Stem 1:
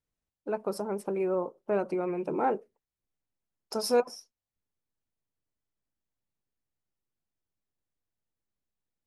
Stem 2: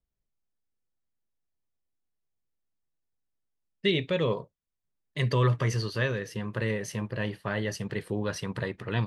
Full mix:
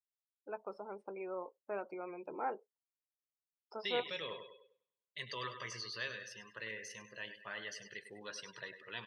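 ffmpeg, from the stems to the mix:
-filter_complex "[0:a]acrossover=split=3000[s0][s1];[s1]acompressor=threshold=0.00178:ratio=4:attack=1:release=60[s2];[s0][s2]amix=inputs=2:normalize=0,volume=0.596[s3];[1:a]deesser=0.95,highshelf=f=2900:g=11,volume=0.299,asplit=2[s4][s5];[s5]volume=0.355,aecho=0:1:100|200|300|400|500|600|700|800:1|0.56|0.314|0.176|0.0983|0.0551|0.0308|0.0173[s6];[s3][s4][s6]amix=inputs=3:normalize=0,highpass=f=1200:p=1,afftdn=nr=21:nf=-53,lowpass=6700"

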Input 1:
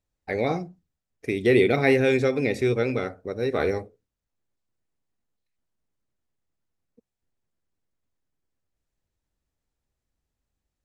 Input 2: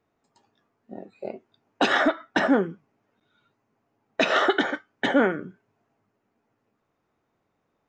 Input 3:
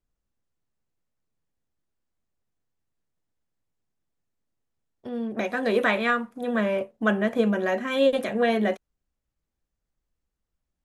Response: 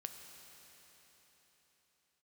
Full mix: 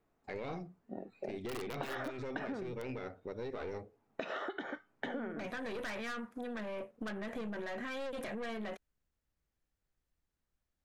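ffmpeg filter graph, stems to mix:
-filter_complex "[0:a]lowpass=5400,aeval=exprs='(mod(3.35*val(0)+1,2)-1)/3.35':c=same,volume=0.473[s0];[1:a]highshelf=f=3400:g=-9,acompressor=threshold=0.0447:ratio=3,volume=0.668[s1];[2:a]equalizer=f=1700:w=1.5:g=4.5,volume=0.75[s2];[s0][s2]amix=inputs=2:normalize=0,aeval=exprs='(tanh(20*val(0)+0.5)-tanh(0.5))/20':c=same,alimiter=level_in=1.88:limit=0.0631:level=0:latency=1:release=13,volume=0.531,volume=1[s3];[s1][s3]amix=inputs=2:normalize=0,acompressor=threshold=0.0141:ratio=6"

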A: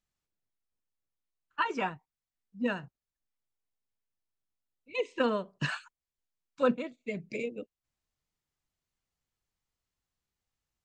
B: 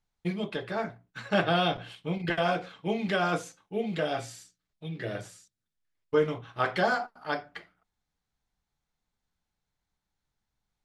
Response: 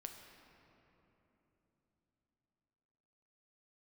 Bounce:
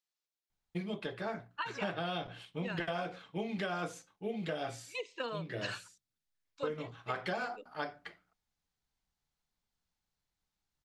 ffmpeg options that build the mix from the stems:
-filter_complex "[0:a]highpass=400,equalizer=f=4400:w=1:g=8,volume=0.422[s0];[1:a]adelay=500,volume=0.562[s1];[s0][s1]amix=inputs=2:normalize=0,acompressor=threshold=0.0251:ratio=12"

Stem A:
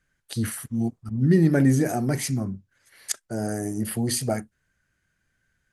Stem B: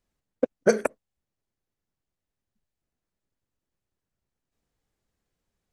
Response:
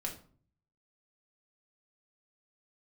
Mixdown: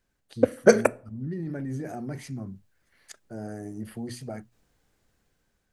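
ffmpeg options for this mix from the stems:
-filter_complex "[0:a]lowpass=f=2500:p=1,bandreject=f=60:t=h:w=6,bandreject=f=120:t=h:w=6,alimiter=limit=0.126:level=0:latency=1:release=11,volume=0.376[s0];[1:a]dynaudnorm=f=510:g=5:m=2.51,volume=1.33,asplit=2[s1][s2];[s2]volume=0.178[s3];[2:a]atrim=start_sample=2205[s4];[s3][s4]afir=irnorm=-1:irlink=0[s5];[s0][s1][s5]amix=inputs=3:normalize=0"

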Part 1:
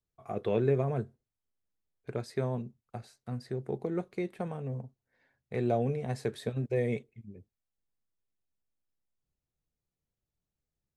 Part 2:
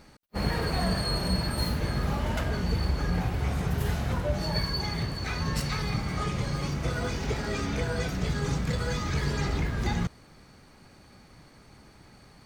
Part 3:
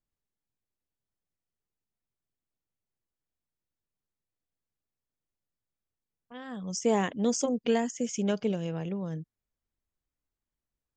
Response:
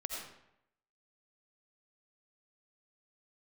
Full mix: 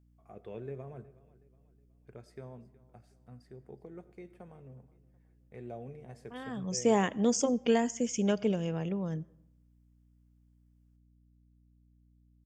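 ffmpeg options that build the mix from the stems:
-filter_complex "[0:a]volume=0.158,asplit=3[s0][s1][s2];[s1]volume=0.211[s3];[s2]volume=0.119[s4];[2:a]volume=0.944,asplit=2[s5][s6];[s6]volume=0.0841[s7];[3:a]atrim=start_sample=2205[s8];[s3][s7]amix=inputs=2:normalize=0[s9];[s9][s8]afir=irnorm=-1:irlink=0[s10];[s4]aecho=0:1:368|736|1104|1472|1840|2208:1|0.41|0.168|0.0689|0.0283|0.0116[s11];[s0][s5][s10][s11]amix=inputs=4:normalize=0,bandreject=f=4000:w=6.2,aeval=exprs='val(0)+0.000708*(sin(2*PI*60*n/s)+sin(2*PI*2*60*n/s)/2+sin(2*PI*3*60*n/s)/3+sin(2*PI*4*60*n/s)/4+sin(2*PI*5*60*n/s)/5)':c=same"

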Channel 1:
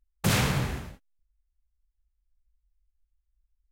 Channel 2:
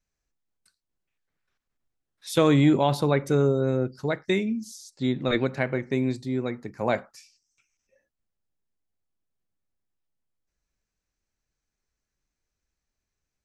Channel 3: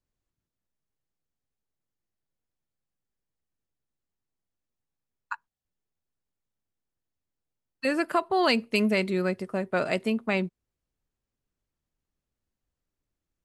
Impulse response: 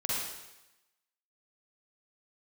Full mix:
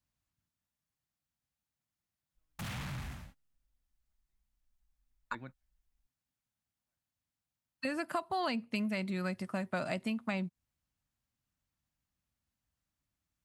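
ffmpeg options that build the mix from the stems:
-filter_complex "[0:a]asoftclip=type=tanh:threshold=0.0316,adelay=2350,volume=0.501[s0];[1:a]lowpass=3800,equalizer=f=1600:t=o:w=0.76:g=6.5,volume=0.126[s1];[2:a]highpass=51,volume=1.12,asplit=2[s2][s3];[s3]apad=whole_len=593075[s4];[s1][s4]sidechaingate=range=0.00158:threshold=0.00251:ratio=16:detection=peak[s5];[s0][s5][s2]amix=inputs=3:normalize=0,equalizer=f=420:t=o:w=0.71:g=-14.5,acrossover=split=890|3900[s6][s7][s8];[s6]acompressor=threshold=0.02:ratio=4[s9];[s7]acompressor=threshold=0.00794:ratio=4[s10];[s8]acompressor=threshold=0.00251:ratio=4[s11];[s9][s10][s11]amix=inputs=3:normalize=0"

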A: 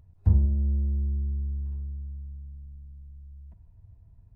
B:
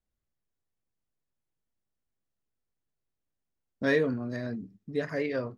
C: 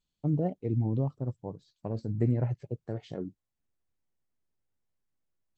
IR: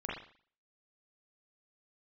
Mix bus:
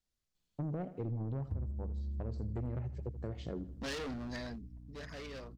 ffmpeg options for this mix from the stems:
-filter_complex "[0:a]aeval=exprs='val(0)+0.00891*(sin(2*PI*60*n/s)+sin(2*PI*2*60*n/s)/2+sin(2*PI*3*60*n/s)/3+sin(2*PI*4*60*n/s)/4+sin(2*PI*5*60*n/s)/5)':c=same,adelay=1250,volume=0.355[s0];[1:a]volume=44.7,asoftclip=hard,volume=0.0224,equalizer=f=4900:t=o:w=1.8:g=10.5,volume=0.631,afade=t=out:st=4.41:d=0.21:silence=0.398107[s1];[2:a]asoftclip=type=tanh:threshold=0.0473,adelay=350,volume=0.944,asplit=2[s2][s3];[s3]volume=0.158,aecho=0:1:80|160|240|320|400:1|0.38|0.144|0.0549|0.0209[s4];[s0][s1][s2][s4]amix=inputs=4:normalize=0,acompressor=threshold=0.0158:ratio=4"

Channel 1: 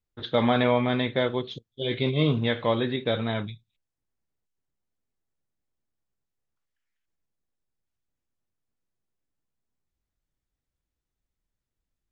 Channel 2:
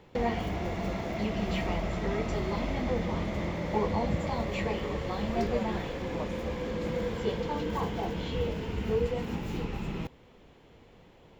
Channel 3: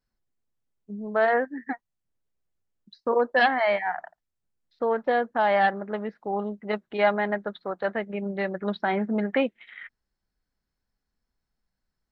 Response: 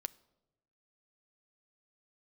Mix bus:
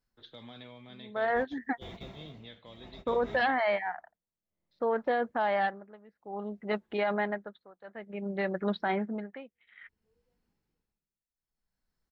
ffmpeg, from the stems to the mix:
-filter_complex "[0:a]bass=f=250:g=-7,treble=f=4000:g=7,acrossover=split=230|3000[s0][s1][s2];[s1]acompressor=threshold=0.0126:ratio=2.5[s3];[s0][s3][s2]amix=inputs=3:normalize=0,volume=0.126,asplit=2[s4][s5];[1:a]adelay=1150,volume=0.282[s6];[2:a]volume=0.891[s7];[s5]apad=whole_len=553079[s8];[s6][s8]sidechaingate=range=0.0158:threshold=0.00251:ratio=16:detection=peak[s9];[s9][s7]amix=inputs=2:normalize=0,tremolo=f=0.58:d=0.93,alimiter=limit=0.1:level=0:latency=1:release=11,volume=1[s10];[s4][s10]amix=inputs=2:normalize=0"

